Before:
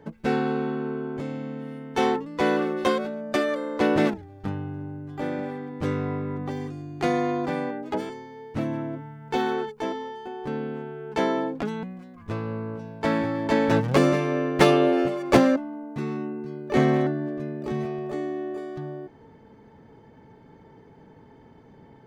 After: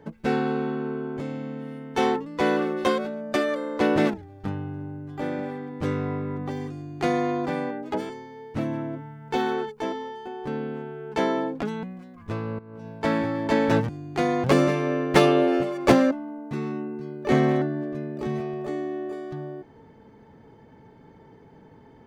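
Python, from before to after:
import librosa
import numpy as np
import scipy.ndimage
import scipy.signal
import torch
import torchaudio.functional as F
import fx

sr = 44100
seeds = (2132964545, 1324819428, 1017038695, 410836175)

y = fx.edit(x, sr, fx.duplicate(start_s=6.74, length_s=0.55, to_s=13.89),
    fx.fade_in_from(start_s=12.59, length_s=0.28, curve='qua', floor_db=-15.0), tone=tone)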